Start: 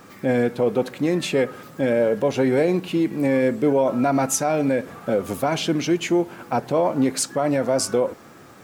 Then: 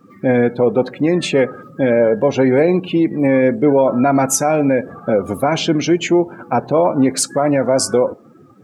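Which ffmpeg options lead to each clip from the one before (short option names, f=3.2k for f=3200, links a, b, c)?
-af "afftdn=nr=22:nf=-38,volume=6dB"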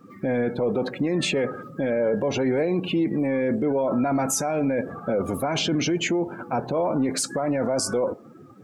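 -af "alimiter=limit=-14.5dB:level=0:latency=1:release=18,volume=-1.5dB"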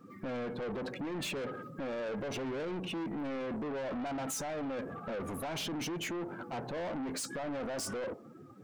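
-af "asoftclip=type=tanh:threshold=-29.5dB,volume=-5.5dB"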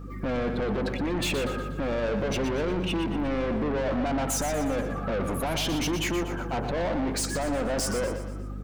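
-filter_complex "[0:a]aeval=exprs='val(0)+0.00447*(sin(2*PI*50*n/s)+sin(2*PI*2*50*n/s)/2+sin(2*PI*3*50*n/s)/3+sin(2*PI*4*50*n/s)/4+sin(2*PI*5*50*n/s)/5)':c=same,asplit=2[a][b];[b]aecho=0:1:120|240|360|480|600:0.355|0.167|0.0784|0.0368|0.0173[c];[a][c]amix=inputs=2:normalize=0,volume=8.5dB"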